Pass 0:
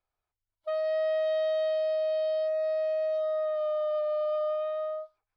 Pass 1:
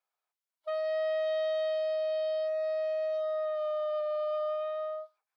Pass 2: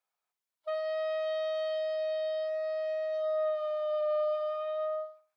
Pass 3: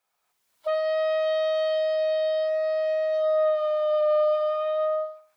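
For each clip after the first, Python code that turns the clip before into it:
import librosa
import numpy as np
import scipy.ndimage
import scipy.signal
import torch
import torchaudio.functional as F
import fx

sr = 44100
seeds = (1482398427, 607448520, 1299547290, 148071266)

y1 = scipy.signal.sosfilt(scipy.signal.butter(2, 610.0, 'highpass', fs=sr, output='sos'), x)
y2 = fx.room_flutter(y1, sr, wall_m=11.3, rt60_s=0.38)
y3 = fx.recorder_agc(y2, sr, target_db=-30.0, rise_db_per_s=22.0, max_gain_db=30)
y3 = y3 * librosa.db_to_amplitude(8.0)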